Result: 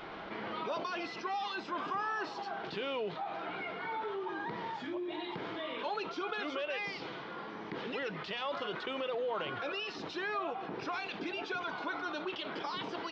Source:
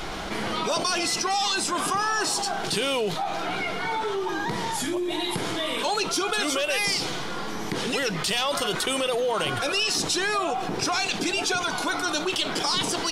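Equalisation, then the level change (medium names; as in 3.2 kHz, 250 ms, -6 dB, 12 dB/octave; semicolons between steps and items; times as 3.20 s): Gaussian low-pass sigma 2.7 samples; high-pass 270 Hz 6 dB/octave; band-stop 740 Hz, Q 18; -8.5 dB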